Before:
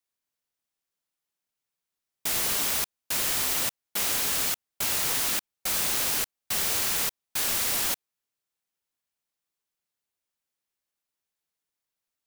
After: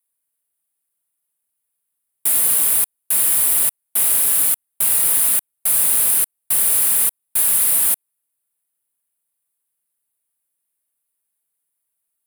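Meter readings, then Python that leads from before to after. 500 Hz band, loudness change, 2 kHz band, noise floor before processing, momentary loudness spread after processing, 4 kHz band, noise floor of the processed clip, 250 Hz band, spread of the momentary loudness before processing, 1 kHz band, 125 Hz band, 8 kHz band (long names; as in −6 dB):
0.0 dB, +11.0 dB, −0.5 dB, below −85 dBFS, 5 LU, −3.0 dB, −77 dBFS, 0.0 dB, 5 LU, 0.0 dB, can't be measured, +12.0 dB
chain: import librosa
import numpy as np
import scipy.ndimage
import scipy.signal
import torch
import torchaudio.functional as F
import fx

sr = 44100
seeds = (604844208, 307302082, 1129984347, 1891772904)

y = fx.high_shelf_res(x, sr, hz=7800.0, db=10.0, q=3.0)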